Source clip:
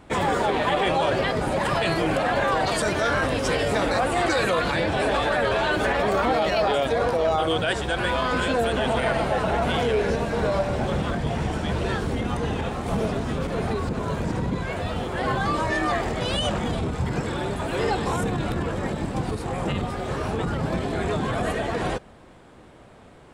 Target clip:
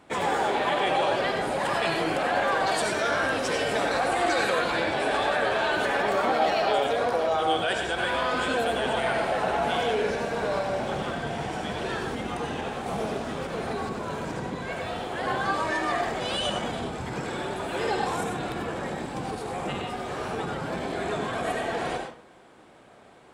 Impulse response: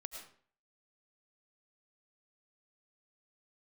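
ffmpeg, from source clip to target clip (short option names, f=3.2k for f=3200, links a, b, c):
-filter_complex "[0:a]highpass=f=280:p=1[a];[1:a]atrim=start_sample=2205,asetrate=52920,aresample=44100[b];[a][b]afir=irnorm=-1:irlink=0,volume=3.5dB"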